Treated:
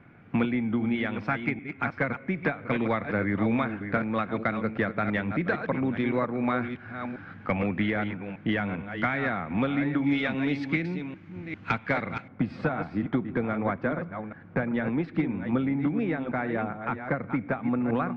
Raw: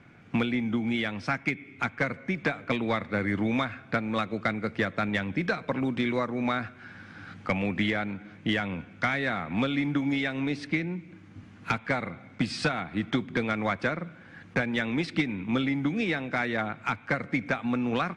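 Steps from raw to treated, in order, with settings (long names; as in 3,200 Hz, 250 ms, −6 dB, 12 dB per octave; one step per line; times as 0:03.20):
delay that plays each chunk backwards 398 ms, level −8 dB
low-pass filter 2,100 Hz 12 dB per octave, from 0:10.04 3,500 Hz, from 0:12.28 1,300 Hz
level +1 dB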